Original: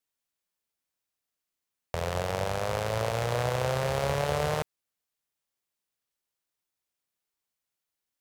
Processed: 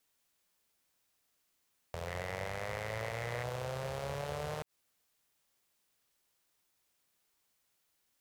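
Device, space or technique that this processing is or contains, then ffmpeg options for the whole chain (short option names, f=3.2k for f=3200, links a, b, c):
de-esser from a sidechain: -filter_complex "[0:a]asplit=2[a][b];[b]highpass=f=5.3k:p=1,apad=whole_len=362004[c];[a][c]sidechaincompress=threshold=-56dB:ratio=3:attack=0.54:release=59,asettb=1/sr,asplit=3[d][e][f];[d]atrim=end=2.074[g];[e]atrim=start=2.07:end=3.44,asetpts=PTS-STARTPTS,afade=t=in:d=0.004:c=qsin,afade=t=out:st=1.366:d=0.004:c=qsin,equalizer=f=2k:w=3.7:g=12.5[h];[f]atrim=start=3.436[i];[g][h]acrossfade=d=0.004:c1=hsin:c2=qsin[j];[j][i]acrossfade=d=0.004:c1=qsin:c2=hsin,volume=9dB"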